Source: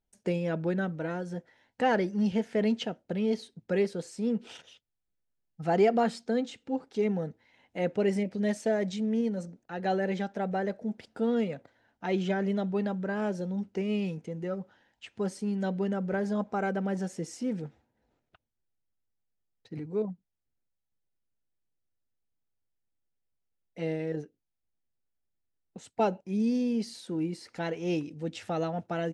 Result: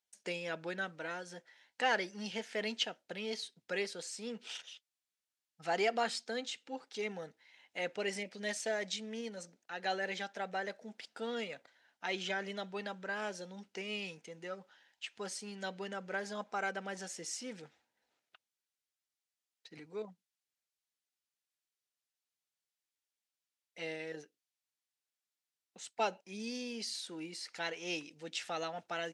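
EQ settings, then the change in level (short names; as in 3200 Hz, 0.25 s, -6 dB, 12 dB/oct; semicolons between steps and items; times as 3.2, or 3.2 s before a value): band-pass 5000 Hz, Q 0.51; +5.0 dB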